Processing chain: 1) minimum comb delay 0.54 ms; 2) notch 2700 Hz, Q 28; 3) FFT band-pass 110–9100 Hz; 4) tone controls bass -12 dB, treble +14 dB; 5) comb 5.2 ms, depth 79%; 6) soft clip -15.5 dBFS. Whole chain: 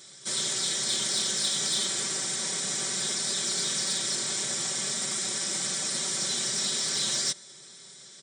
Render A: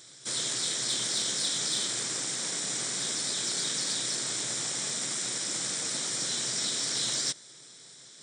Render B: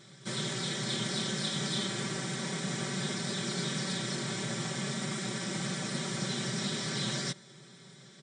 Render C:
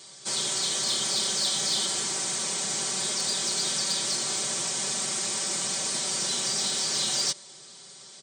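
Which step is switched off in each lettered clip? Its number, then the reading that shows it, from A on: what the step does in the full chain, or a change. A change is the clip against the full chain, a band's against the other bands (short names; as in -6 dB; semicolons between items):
5, loudness change -2.0 LU; 4, 8 kHz band -13.0 dB; 1, 1 kHz band +3.5 dB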